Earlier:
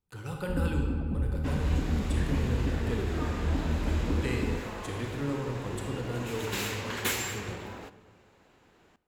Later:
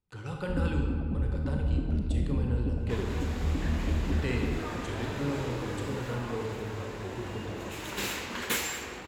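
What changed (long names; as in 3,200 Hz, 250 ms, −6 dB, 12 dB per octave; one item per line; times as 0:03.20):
speech: add low-pass filter 6,800 Hz 12 dB per octave
second sound: entry +1.45 s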